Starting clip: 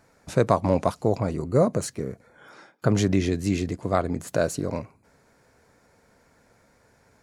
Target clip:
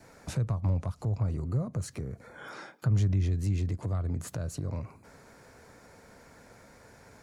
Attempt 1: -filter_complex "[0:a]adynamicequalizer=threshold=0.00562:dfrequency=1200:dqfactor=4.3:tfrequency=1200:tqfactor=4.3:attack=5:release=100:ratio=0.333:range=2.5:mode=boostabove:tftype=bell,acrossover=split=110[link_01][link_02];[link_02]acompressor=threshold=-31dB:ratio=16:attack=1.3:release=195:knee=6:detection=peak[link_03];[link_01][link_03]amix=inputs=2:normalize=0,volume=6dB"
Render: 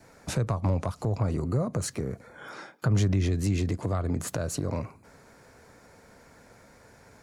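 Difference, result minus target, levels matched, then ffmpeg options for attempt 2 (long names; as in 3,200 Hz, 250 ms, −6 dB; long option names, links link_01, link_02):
downward compressor: peak gain reduction −9.5 dB
-filter_complex "[0:a]adynamicequalizer=threshold=0.00562:dfrequency=1200:dqfactor=4.3:tfrequency=1200:tqfactor=4.3:attack=5:release=100:ratio=0.333:range=2.5:mode=boostabove:tftype=bell,acrossover=split=110[link_01][link_02];[link_02]acompressor=threshold=-41dB:ratio=16:attack=1.3:release=195:knee=6:detection=peak[link_03];[link_01][link_03]amix=inputs=2:normalize=0,volume=6dB"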